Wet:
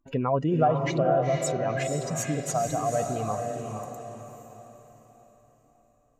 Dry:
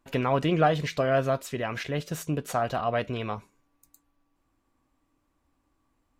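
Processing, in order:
expanding power law on the bin magnitudes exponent 1.9
parametric band 6,900 Hz +11 dB 0.66 octaves
feedback delay with all-pass diffusion 479 ms, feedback 43%, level −4 dB

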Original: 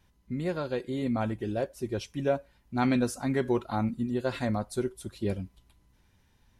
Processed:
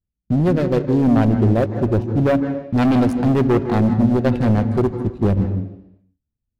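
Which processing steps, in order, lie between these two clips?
adaptive Wiener filter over 41 samples
noise gate −53 dBFS, range −25 dB
low-shelf EQ 340 Hz +8 dB
in parallel at −2 dB: brickwall limiter −17.5 dBFS, peak gain reduction 7.5 dB
on the sum: leveller curve on the samples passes 2
hard clipping −12.5 dBFS, distortion −17 dB
on a send at −9.5 dB: convolution reverb RT60 0.85 s, pre-delay 147 ms

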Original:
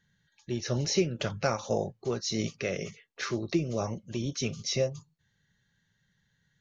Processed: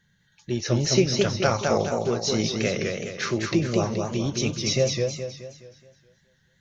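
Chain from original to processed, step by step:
feedback echo with a swinging delay time 211 ms, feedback 44%, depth 128 cents, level −3.5 dB
level +5.5 dB

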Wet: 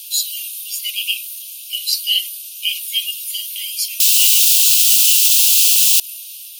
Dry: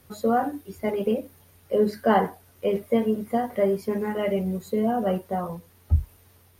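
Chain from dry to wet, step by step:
0:04.00–0:06.00: bit-depth reduction 6 bits, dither triangular
Butterworth high-pass 2,600 Hz 96 dB per octave
boost into a limiter +29 dB
level −1 dB

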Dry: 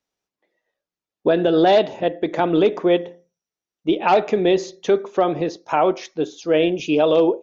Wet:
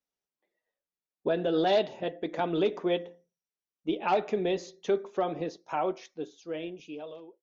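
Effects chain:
fade-out on the ending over 1.99 s
flanger 1.3 Hz, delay 3.8 ms, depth 1.8 ms, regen −56%
0:01.49–0:03.03: dynamic equaliser 4,600 Hz, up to +4 dB, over −41 dBFS, Q 0.81
level −6.5 dB

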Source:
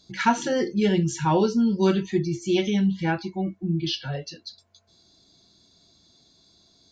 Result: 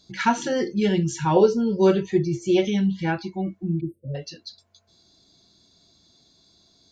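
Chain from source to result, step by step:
0:01.36–0:02.65: octave-band graphic EQ 125/250/500/4,000 Hz +5/−6/+11/−3 dB
0:03.80–0:04.15: time-frequency box erased 610–7,700 Hz

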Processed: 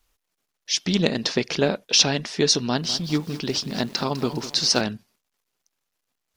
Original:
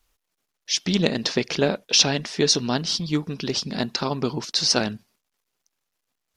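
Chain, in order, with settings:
0:02.63–0:04.81: feedback echo at a low word length 202 ms, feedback 55%, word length 6 bits, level −13 dB

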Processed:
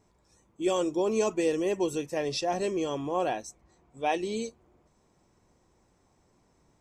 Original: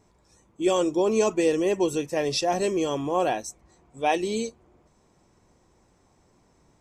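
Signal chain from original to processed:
0:02.18–0:04.42: high-shelf EQ 11,000 Hz −10.5 dB
level −4.5 dB

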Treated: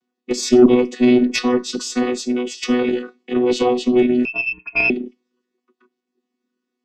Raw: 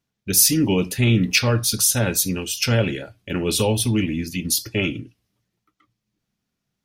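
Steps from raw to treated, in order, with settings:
channel vocoder with a chord as carrier bare fifth, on B3
0:04.25–0:04.90: voice inversion scrambler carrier 2,900 Hz
harmonic generator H 4 −23 dB, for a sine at −5.5 dBFS
level +5 dB

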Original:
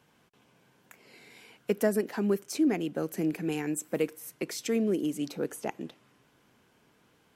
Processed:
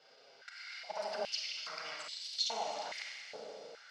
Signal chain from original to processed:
lower of the sound and its delayed copy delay 1.4 ms
in parallel at −1 dB: downward compressor, threshold −42 dBFS, peak gain reduction 15.5 dB
on the sum: brickwall limiter −27 dBFS, peak gain reduction 10.5 dB
reversed playback
upward compression, threshold −55 dBFS
reversed playback
transistor ladder low-pass 5,200 Hz, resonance 75%
flanger swept by the level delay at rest 9 ms, full sweep at −41.5 dBFS
time stretch by overlap-add 0.53×, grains 61 ms
feedback delay with all-pass diffusion 592 ms, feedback 47%, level −16 dB
four-comb reverb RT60 2.1 s, combs from 32 ms, DRR −1 dB
high-pass on a step sequencer 2.4 Hz 460–3,800 Hz
level +9 dB

